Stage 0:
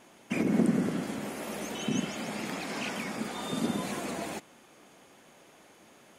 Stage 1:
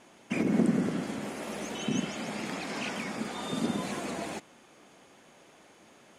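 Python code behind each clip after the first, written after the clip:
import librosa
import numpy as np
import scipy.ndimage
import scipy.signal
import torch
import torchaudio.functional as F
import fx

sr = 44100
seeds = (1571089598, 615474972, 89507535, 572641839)

y = scipy.signal.sosfilt(scipy.signal.butter(2, 9800.0, 'lowpass', fs=sr, output='sos'), x)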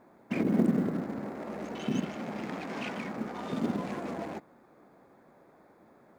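y = fx.wiener(x, sr, points=15)
y = fx.high_shelf(y, sr, hz=6500.0, db=-12.0)
y = fx.quant_companded(y, sr, bits=8)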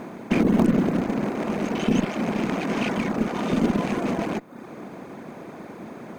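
y = fx.bin_compress(x, sr, power=0.6)
y = fx.cheby_harmonics(y, sr, harmonics=(2, 4, 5), levels_db=(-6, -11, -24), full_scale_db=-11.5)
y = fx.dereverb_blind(y, sr, rt60_s=0.66)
y = y * 10.0 ** (5.5 / 20.0)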